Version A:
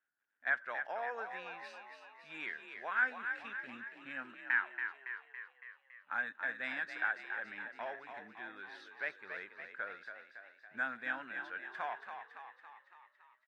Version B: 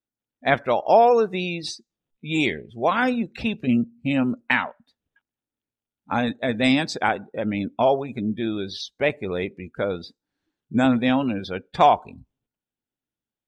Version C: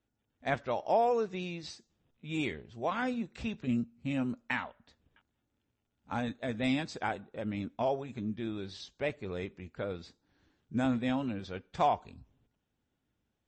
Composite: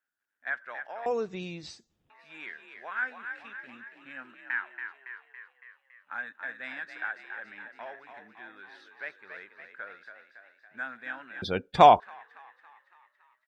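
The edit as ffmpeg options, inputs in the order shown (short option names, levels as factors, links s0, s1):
-filter_complex "[0:a]asplit=3[s0][s1][s2];[s0]atrim=end=1.062[s3];[2:a]atrim=start=1.058:end=2.102[s4];[s1]atrim=start=2.098:end=11.422[s5];[1:a]atrim=start=11.418:end=12.002[s6];[s2]atrim=start=11.998[s7];[s3][s4]acrossfade=d=0.004:c1=hsin:c2=hsin[s8];[s8][s5]acrossfade=d=0.004:c1=hsin:c2=hsin[s9];[s9][s6]acrossfade=d=0.004:c1=hsin:c2=hsin[s10];[s10][s7]acrossfade=d=0.004:c1=hsin:c2=hsin"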